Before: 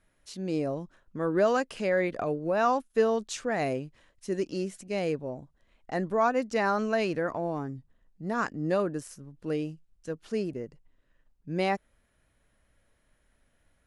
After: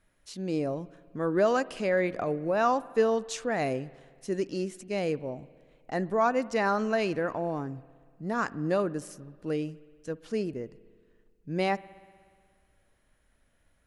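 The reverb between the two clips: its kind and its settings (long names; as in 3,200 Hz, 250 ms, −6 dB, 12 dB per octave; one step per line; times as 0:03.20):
spring reverb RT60 1.9 s, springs 60 ms, chirp 60 ms, DRR 19.5 dB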